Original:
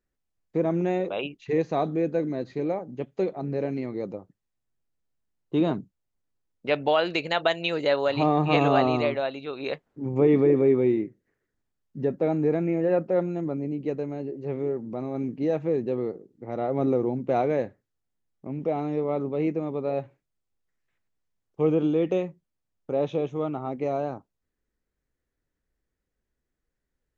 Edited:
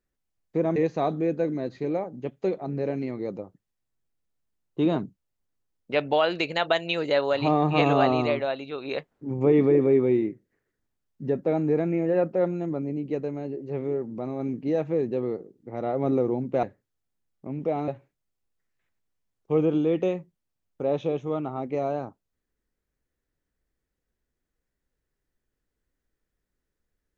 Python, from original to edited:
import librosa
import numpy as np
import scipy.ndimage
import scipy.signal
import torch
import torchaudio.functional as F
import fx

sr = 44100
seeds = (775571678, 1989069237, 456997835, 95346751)

y = fx.edit(x, sr, fx.cut(start_s=0.76, length_s=0.75),
    fx.cut(start_s=17.38, length_s=0.25),
    fx.cut(start_s=18.88, length_s=1.09), tone=tone)